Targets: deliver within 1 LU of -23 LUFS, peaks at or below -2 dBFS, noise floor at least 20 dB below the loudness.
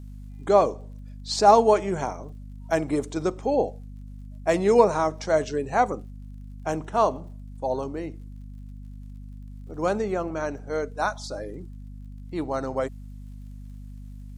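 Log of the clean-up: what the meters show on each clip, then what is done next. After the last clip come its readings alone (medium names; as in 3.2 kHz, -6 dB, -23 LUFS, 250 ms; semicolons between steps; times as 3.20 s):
tick rate 47 per s; hum 50 Hz; highest harmonic 250 Hz; hum level -37 dBFS; loudness -24.5 LUFS; peak level -4.0 dBFS; loudness target -23.0 LUFS
-> de-click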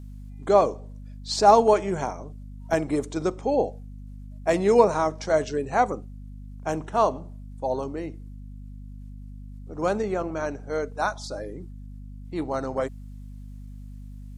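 tick rate 0.35 per s; hum 50 Hz; highest harmonic 250 Hz; hum level -38 dBFS
-> de-hum 50 Hz, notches 5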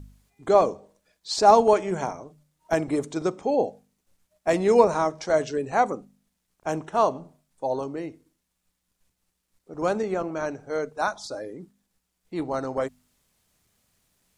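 hum not found; loudness -24.5 LUFS; peak level -4.0 dBFS; loudness target -23.0 LUFS
-> trim +1.5 dB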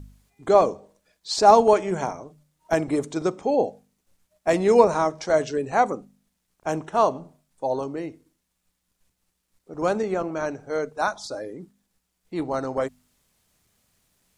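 loudness -23.0 LUFS; peak level -2.5 dBFS; noise floor -77 dBFS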